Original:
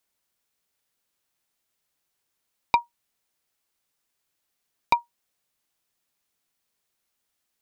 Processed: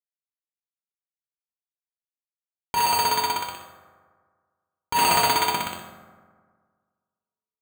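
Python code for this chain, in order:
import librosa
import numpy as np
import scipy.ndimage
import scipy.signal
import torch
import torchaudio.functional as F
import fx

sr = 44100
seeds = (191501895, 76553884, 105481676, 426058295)

y = fx.tracing_dist(x, sr, depth_ms=0.15)
y = fx.air_absorb(y, sr, metres=240.0)
y = fx.comb_fb(y, sr, f0_hz=400.0, decay_s=0.37, harmonics='all', damping=0.0, mix_pct=50)
y = fx.echo_thinned(y, sr, ms=62, feedback_pct=78, hz=370.0, wet_db=-9)
y = fx.over_compress(y, sr, threshold_db=-40.0, ratio=-1.0)
y = fx.fuzz(y, sr, gain_db=48.0, gate_db=-55.0)
y = fx.high_shelf(y, sr, hz=3200.0, db=fx.steps((0.0, 2.0), (4.96, 11.5)))
y = np.repeat(y[::8], 8)[:len(y)]
y = scipy.signal.sosfilt(scipy.signal.butter(2, 50.0, 'highpass', fs=sr, output='sos'), y)
y = fx.comb_fb(y, sr, f0_hz=88.0, decay_s=0.55, harmonics='all', damping=0.0, mix_pct=80)
y = fx.rev_fdn(y, sr, rt60_s=1.7, lf_ratio=1.0, hf_ratio=0.45, size_ms=14.0, drr_db=2.0)
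y = y * 10.0 ** (3.5 / 20.0)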